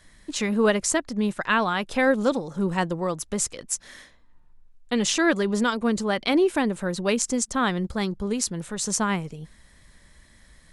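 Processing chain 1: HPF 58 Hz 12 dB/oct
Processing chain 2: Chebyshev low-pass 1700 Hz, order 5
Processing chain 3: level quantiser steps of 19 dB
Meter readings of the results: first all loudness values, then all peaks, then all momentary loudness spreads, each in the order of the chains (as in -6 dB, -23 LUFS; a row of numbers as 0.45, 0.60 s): -24.5, -26.0, -32.5 LUFS; -5.5, -9.0, -9.5 dBFS; 8, 11, 15 LU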